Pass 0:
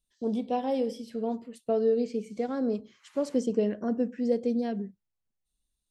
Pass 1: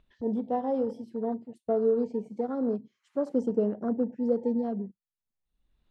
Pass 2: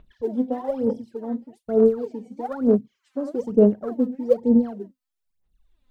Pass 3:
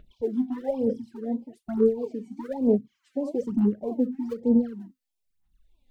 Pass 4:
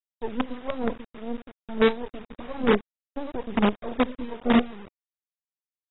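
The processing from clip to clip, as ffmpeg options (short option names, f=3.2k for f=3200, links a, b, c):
-filter_complex "[0:a]afwtdn=0.0126,acrossover=split=2900[a][b];[a]acompressor=mode=upward:threshold=-42dB:ratio=2.5[c];[c][b]amix=inputs=2:normalize=0"
-af "aphaser=in_gain=1:out_gain=1:delay=4:decay=0.79:speed=1.1:type=sinusoidal"
-filter_complex "[0:a]asplit=2[a][b];[b]acompressor=threshold=-25dB:ratio=16,volume=-1.5dB[c];[a][c]amix=inputs=2:normalize=0,afftfilt=real='re*(1-between(b*sr/1024,480*pow(1600/480,0.5+0.5*sin(2*PI*1.6*pts/sr))/1.41,480*pow(1600/480,0.5+0.5*sin(2*PI*1.6*pts/sr))*1.41))':imag='im*(1-between(b*sr/1024,480*pow(1600/480,0.5+0.5*sin(2*PI*1.6*pts/sr))/1.41,480*pow(1600/480,0.5+0.5*sin(2*PI*1.6*pts/sr))*1.41))':win_size=1024:overlap=0.75,volume=-5dB"
-af "acrusher=bits=4:dc=4:mix=0:aa=0.000001" -ar 22050 -c:a aac -b:a 16k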